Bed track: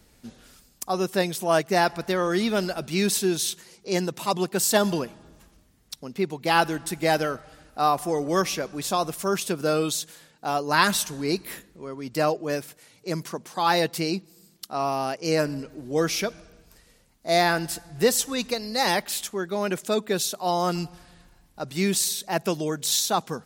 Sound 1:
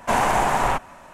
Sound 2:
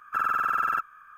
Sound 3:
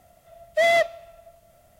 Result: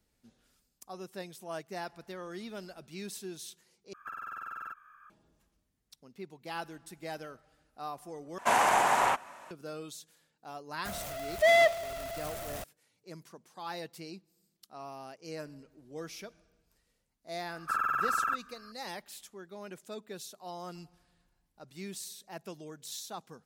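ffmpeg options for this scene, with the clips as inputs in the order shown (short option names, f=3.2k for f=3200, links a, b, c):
-filter_complex "[2:a]asplit=2[a][b];[0:a]volume=-18.5dB[c];[a]acompressor=threshold=-32dB:ratio=6:attack=3.2:release=140:knee=1:detection=peak[d];[1:a]highpass=f=610:p=1[e];[3:a]aeval=exprs='val(0)+0.5*0.0282*sgn(val(0))':c=same[f];[c]asplit=3[g][h][i];[g]atrim=end=3.934[j];[d]atrim=end=1.17,asetpts=PTS-STARTPTS,volume=-6.5dB[k];[h]atrim=start=5.096:end=8.384[l];[e]atrim=end=1.13,asetpts=PTS-STARTPTS,volume=-3dB[m];[i]atrim=start=9.506[n];[f]atrim=end=1.79,asetpts=PTS-STARTPTS,volume=-4dB,afade=t=in:d=0.004:c=hsin,afade=t=out:st=1.786:d=0.004:c=hsin,adelay=10850[o];[b]atrim=end=1.17,asetpts=PTS-STARTPTS,volume=-4.5dB,afade=t=in:d=0.004:c=hsin,afade=t=out:st=1.166:d=0.004:c=hsin,adelay=17550[p];[j][k]acrossfade=d=0.004:c1=hsin:c2=hsin[q];[q][l]acrossfade=d=0.004:c1=hsin:c2=hsin[r];[r][m]acrossfade=d=0.004:c1=hsin:c2=hsin[s];[s][n]acrossfade=d=0.004:c1=hsin:c2=hsin[t];[t][o][p]amix=inputs=3:normalize=0"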